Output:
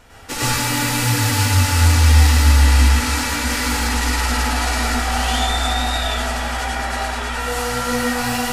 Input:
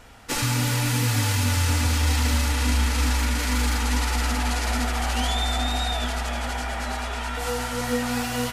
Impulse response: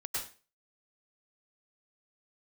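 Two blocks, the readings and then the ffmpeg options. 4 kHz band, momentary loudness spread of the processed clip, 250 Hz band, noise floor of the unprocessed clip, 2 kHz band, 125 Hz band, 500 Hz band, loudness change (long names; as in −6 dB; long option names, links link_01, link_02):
+6.0 dB, 9 LU, +4.0 dB, −30 dBFS, +7.0 dB, +7.0 dB, +5.0 dB, +6.5 dB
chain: -filter_complex "[1:a]atrim=start_sample=2205[link_01];[0:a][link_01]afir=irnorm=-1:irlink=0,volume=4dB"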